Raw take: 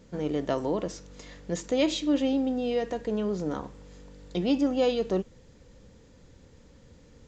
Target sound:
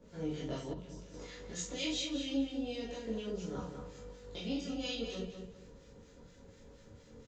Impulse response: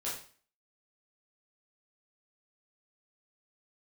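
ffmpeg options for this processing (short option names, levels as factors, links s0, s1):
-filter_complex "[0:a]acrossover=split=180|2300[s0][s1][s2];[s1]acompressor=threshold=0.01:ratio=6[s3];[s0][s3][s2]amix=inputs=3:normalize=0,acrossover=split=1300[s4][s5];[s4]aeval=exprs='val(0)*(1-0.7/2+0.7/2*cos(2*PI*4.2*n/s))':c=same[s6];[s5]aeval=exprs='val(0)*(1-0.7/2-0.7/2*cos(2*PI*4.2*n/s))':c=same[s7];[s6][s7]amix=inputs=2:normalize=0,asplit=2[s8][s9];[s9]adelay=201,lowpass=f=3700:p=1,volume=0.501,asplit=2[s10][s11];[s11]adelay=201,lowpass=f=3700:p=1,volume=0.3,asplit=2[s12][s13];[s13]adelay=201,lowpass=f=3700:p=1,volume=0.3,asplit=2[s14][s15];[s15]adelay=201,lowpass=f=3700:p=1,volume=0.3[s16];[s8][s10][s12][s14][s16]amix=inputs=5:normalize=0[s17];[1:a]atrim=start_sample=2205,atrim=end_sample=4410[s18];[s17][s18]afir=irnorm=-1:irlink=0,asettb=1/sr,asplit=3[s19][s20][s21];[s19]atrim=end=0.734[s22];[s20]atrim=start=0.73:end=1.14,asetpts=PTS-STARTPTS,afade=t=in:d=0.004:c=qsin,afade=t=out:st=0.406:d=0.004:c=qsin,acrossover=split=170[s23][s24];[s24]acompressor=threshold=0.00282:ratio=3[s25];[s23][s25]amix=inputs=2:normalize=0[s26];[s21]atrim=start=1.136[s27];[s22][s26]acrossfade=d=0.004:c1=hsin:c2=qsin[s28];[s28][s27]acrossfade=d=0.004:c1=qsin:c2=hsin,volume=0.891"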